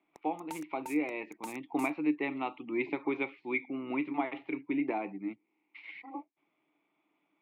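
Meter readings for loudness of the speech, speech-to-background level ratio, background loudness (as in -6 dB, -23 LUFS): -35.0 LUFS, 13.5 dB, -48.5 LUFS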